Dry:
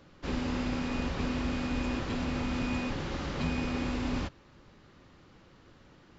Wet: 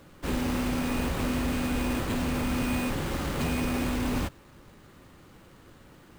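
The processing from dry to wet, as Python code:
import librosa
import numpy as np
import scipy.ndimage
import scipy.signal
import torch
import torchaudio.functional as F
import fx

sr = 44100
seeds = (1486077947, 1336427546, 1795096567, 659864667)

y = np.repeat(x[::4], 4)[:len(x)]
y = 10.0 ** (-26.5 / 20.0) * (np.abs((y / 10.0 ** (-26.5 / 20.0) + 3.0) % 4.0 - 2.0) - 1.0)
y = y * 10.0 ** (4.5 / 20.0)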